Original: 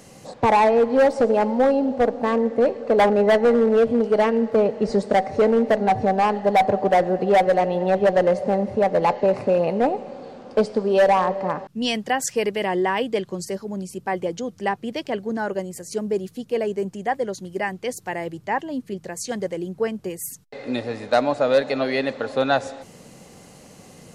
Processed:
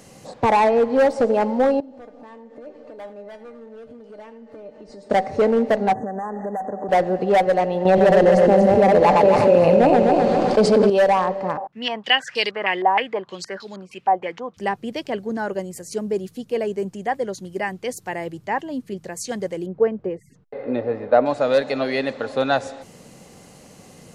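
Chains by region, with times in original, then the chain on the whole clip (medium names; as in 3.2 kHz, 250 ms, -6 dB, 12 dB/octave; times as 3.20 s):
1.80–5.10 s: compression 5:1, threshold -28 dBFS + feedback comb 300 Hz, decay 0.17 s, mix 80% + delay 82 ms -15.5 dB
5.93–6.89 s: compression 10:1, threshold -25 dBFS + brick-wall FIR band-stop 2–6 kHz + resonant low shelf 140 Hz -10 dB, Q 1.5
7.85–10.90 s: backward echo that repeats 128 ms, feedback 57%, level -3.5 dB + level flattener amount 70%
11.57–14.57 s: tilt EQ +4 dB/octave + step-sequenced low-pass 6.4 Hz 790–3900 Hz
19.66–21.26 s: low-pass 1.7 kHz + peaking EQ 490 Hz +6.5 dB 0.81 oct
whole clip: none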